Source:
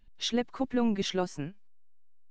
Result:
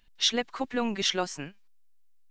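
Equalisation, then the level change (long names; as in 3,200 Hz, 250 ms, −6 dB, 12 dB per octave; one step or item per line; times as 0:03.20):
tilt shelving filter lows −5 dB, about 770 Hz
low-shelf EQ 330 Hz −4.5 dB
+3.5 dB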